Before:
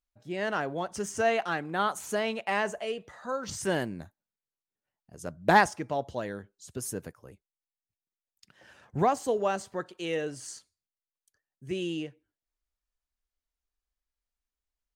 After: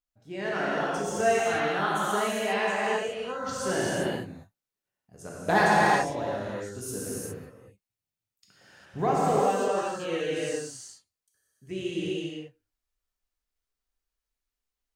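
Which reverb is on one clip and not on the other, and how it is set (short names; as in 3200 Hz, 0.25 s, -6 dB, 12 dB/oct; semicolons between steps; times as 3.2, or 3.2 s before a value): non-linear reverb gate 0.43 s flat, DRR -7.5 dB; gain -5 dB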